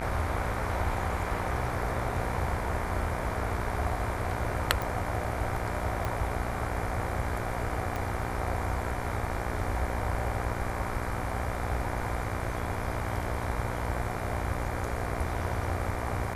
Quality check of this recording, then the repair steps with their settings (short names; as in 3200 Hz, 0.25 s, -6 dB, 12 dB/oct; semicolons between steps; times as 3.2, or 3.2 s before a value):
buzz 60 Hz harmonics 40 -36 dBFS
4.82 pop
6.05 pop -18 dBFS
7.96 pop -19 dBFS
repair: de-click; de-hum 60 Hz, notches 40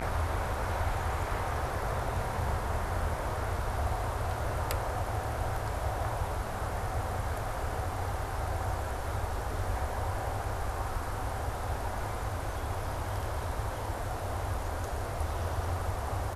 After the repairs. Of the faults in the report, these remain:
7.96 pop